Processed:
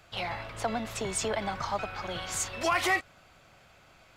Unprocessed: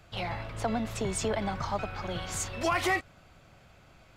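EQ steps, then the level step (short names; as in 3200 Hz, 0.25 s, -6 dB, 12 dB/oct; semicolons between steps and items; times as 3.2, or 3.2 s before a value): low shelf 380 Hz -9 dB; +2.5 dB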